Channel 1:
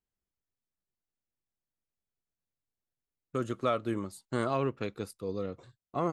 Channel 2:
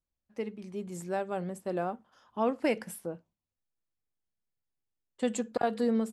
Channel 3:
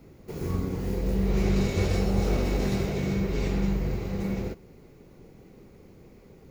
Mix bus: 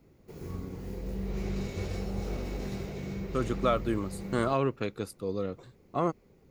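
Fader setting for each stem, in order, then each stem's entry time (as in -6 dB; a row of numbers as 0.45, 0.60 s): +2.5 dB, off, -9.5 dB; 0.00 s, off, 0.00 s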